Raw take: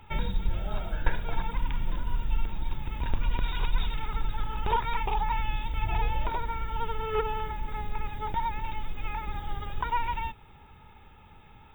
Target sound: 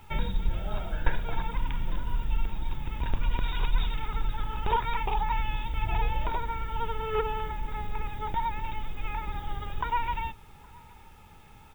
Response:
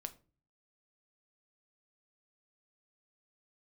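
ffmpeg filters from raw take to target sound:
-filter_complex "[0:a]asplit=2[a][b];[b]adelay=816.3,volume=-25dB,highshelf=f=4k:g=-18.4[c];[a][c]amix=inputs=2:normalize=0,asplit=2[d][e];[1:a]atrim=start_sample=2205[f];[e][f]afir=irnorm=-1:irlink=0,volume=-7.5dB[g];[d][g]amix=inputs=2:normalize=0,acrusher=bits=9:mix=0:aa=0.000001,volume=-2dB"

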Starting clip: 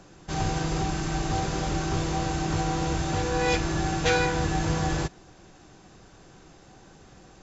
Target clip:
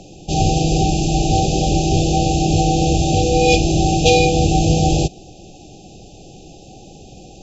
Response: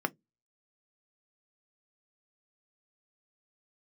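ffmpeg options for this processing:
-af "acontrast=72,afftfilt=real='re*(1-between(b*sr/4096,830,2400))':imag='im*(1-between(b*sr/4096,830,2400))':win_size=4096:overlap=0.75,volume=5dB"

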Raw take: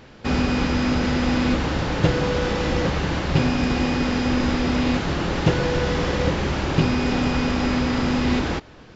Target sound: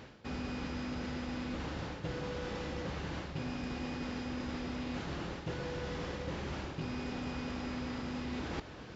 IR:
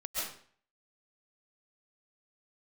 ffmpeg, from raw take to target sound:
-af "highpass=41,areverse,acompressor=threshold=-35dB:ratio=6,areverse,volume=-2.5dB"

